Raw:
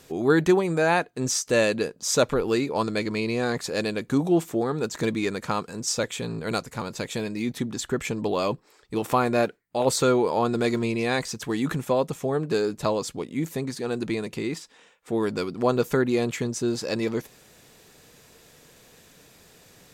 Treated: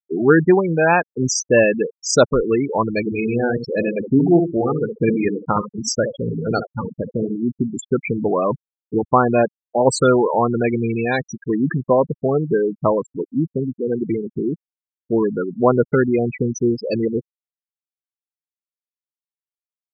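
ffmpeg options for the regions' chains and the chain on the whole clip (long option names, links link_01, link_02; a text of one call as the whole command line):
ffmpeg -i in.wav -filter_complex "[0:a]asettb=1/sr,asplit=3[link_01][link_02][link_03];[link_01]atrim=end=3.004[link_04];[link_02]atrim=start=3:end=7.43,asetpts=PTS-STARTPTS,afade=type=in:duration=0.004:curve=qsin,afade=type=out:start_time=4.426:duration=0.004:curve=qsin,deesser=0.35,asplit=2[link_05][link_06];[link_06]adelay=68,lowpass=frequency=1400:poles=1,volume=-5.5dB,asplit=2[link_07][link_08];[link_08]adelay=68,lowpass=frequency=1400:poles=1,volume=0.35,asplit=2[link_09][link_10];[link_10]adelay=68,lowpass=frequency=1400:poles=1,volume=0.35,asplit=2[link_11][link_12];[link_12]adelay=68,lowpass=frequency=1400:poles=1,volume=0.35[link_13];[link_05][link_07][link_09][link_11][link_13]amix=inputs=5:normalize=0,atrim=end_sample=195363[link_14];[link_03]atrim=start=7.426[link_15];[link_04][link_14]acrossfade=duration=0.004:curve1=hsin:curve2=qsin[link_16];[link_16][link_15]acrossfade=duration=0.004:curve1=qsin:curve2=hsin,afftfilt=real='re*gte(hypot(re,im),0.112)':imag='im*gte(hypot(re,im),0.112)':win_size=1024:overlap=0.75,adynamicequalizer=threshold=0.0316:dfrequency=350:dqfactor=0.71:tfrequency=350:tqfactor=0.71:attack=5:release=100:ratio=0.375:range=2:mode=cutabove:tftype=bell,volume=8dB" out.wav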